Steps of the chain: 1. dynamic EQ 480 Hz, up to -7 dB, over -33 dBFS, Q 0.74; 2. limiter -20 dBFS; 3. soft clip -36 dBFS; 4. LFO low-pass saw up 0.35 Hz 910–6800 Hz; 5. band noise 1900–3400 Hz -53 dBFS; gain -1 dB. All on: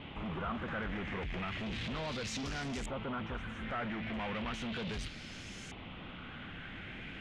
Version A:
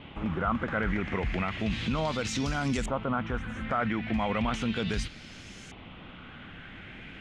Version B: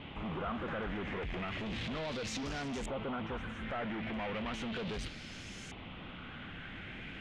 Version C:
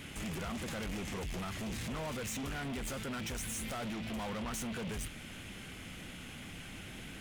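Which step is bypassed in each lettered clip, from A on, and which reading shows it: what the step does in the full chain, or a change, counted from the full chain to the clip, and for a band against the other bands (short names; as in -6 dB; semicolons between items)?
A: 3, distortion -6 dB; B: 1, 500 Hz band +3.0 dB; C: 4, 8 kHz band +9.5 dB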